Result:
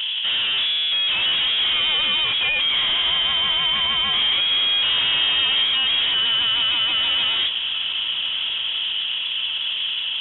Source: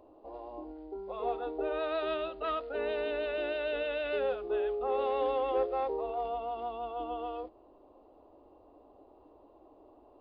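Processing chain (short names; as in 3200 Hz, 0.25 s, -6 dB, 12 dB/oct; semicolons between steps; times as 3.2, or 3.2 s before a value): overdrive pedal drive 42 dB, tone 1800 Hz, clips at -19.5 dBFS; inverted band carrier 3700 Hz; diffused feedback echo 1.364 s, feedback 58%, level -12 dB; gain +5.5 dB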